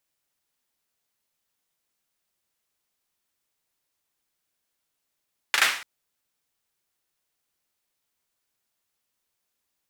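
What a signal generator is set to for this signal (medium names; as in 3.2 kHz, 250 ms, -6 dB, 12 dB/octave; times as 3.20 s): hand clap length 0.29 s, bursts 3, apart 38 ms, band 1.9 kHz, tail 0.49 s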